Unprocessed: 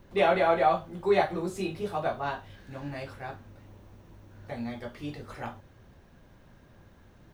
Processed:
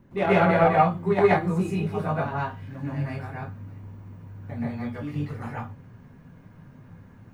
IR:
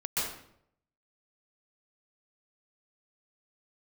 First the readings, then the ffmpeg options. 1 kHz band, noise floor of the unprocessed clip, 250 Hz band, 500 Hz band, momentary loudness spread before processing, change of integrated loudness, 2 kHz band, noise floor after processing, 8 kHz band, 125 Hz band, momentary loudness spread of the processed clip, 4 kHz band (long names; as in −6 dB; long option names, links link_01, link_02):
+4.0 dB, −57 dBFS, +8.5 dB, +3.5 dB, 18 LU, +5.0 dB, +5.0 dB, −50 dBFS, can't be measured, +13.0 dB, 22 LU, −2.0 dB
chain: -filter_complex "[0:a]aeval=exprs='0.316*(cos(1*acos(clip(val(0)/0.316,-1,1)))-cos(1*PI/2))+0.0501*(cos(3*acos(clip(val(0)/0.316,-1,1)))-cos(3*PI/2))':channel_layout=same,equalizer=frequency=125:width_type=o:width=1:gain=10,equalizer=frequency=250:width_type=o:width=1:gain=11,equalizer=frequency=1000:width_type=o:width=1:gain=4,equalizer=frequency=2000:width_type=o:width=1:gain=4,equalizer=frequency=4000:width_type=o:width=1:gain=-5[link_01];[1:a]atrim=start_sample=2205,atrim=end_sample=6615[link_02];[link_01][link_02]afir=irnorm=-1:irlink=0"